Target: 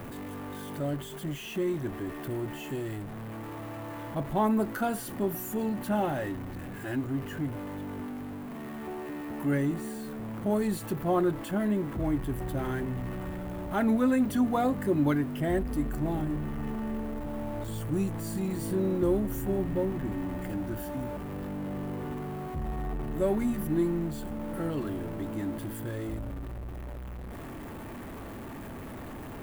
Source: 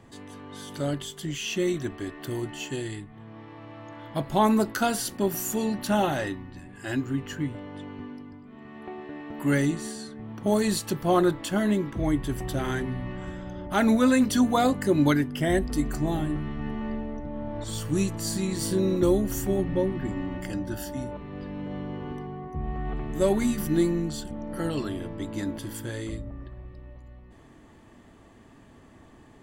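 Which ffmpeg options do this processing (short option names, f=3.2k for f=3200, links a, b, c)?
-af "aeval=exprs='val(0)+0.5*0.0316*sgn(val(0))':c=same,equalizer=f=5.3k:w=0.64:g=-14,volume=-5dB"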